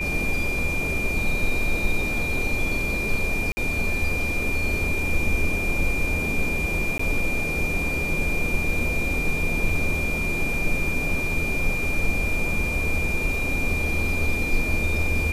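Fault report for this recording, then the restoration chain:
whistle 2,400 Hz −26 dBFS
0:03.52–0:03.57: drop-out 50 ms
0:06.98–0:06.99: drop-out 14 ms
0:09.69: drop-out 2.7 ms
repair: notch filter 2,400 Hz, Q 30
repair the gap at 0:03.52, 50 ms
repair the gap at 0:06.98, 14 ms
repair the gap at 0:09.69, 2.7 ms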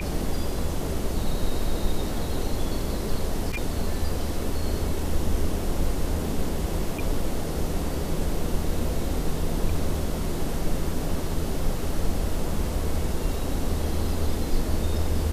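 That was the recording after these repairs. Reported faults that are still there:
whistle 2,400 Hz

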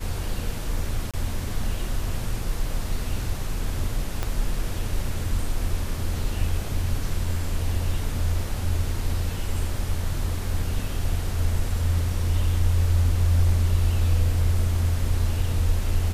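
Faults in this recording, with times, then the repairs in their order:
0:01.11–0:01.14: drop-out 26 ms
0:04.23: click −12 dBFS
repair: click removal
repair the gap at 0:01.11, 26 ms

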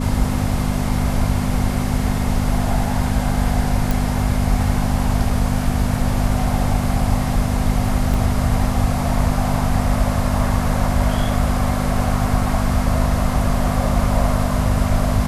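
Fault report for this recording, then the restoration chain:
mains hum 50 Hz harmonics 5 −22 dBFS
0:03.91: click
0:08.14: drop-out 2.9 ms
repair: click removal
hum removal 50 Hz, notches 5
repair the gap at 0:08.14, 2.9 ms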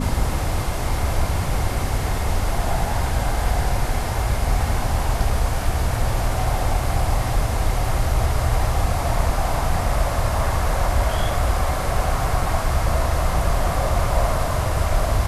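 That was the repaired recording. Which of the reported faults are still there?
none of them is left

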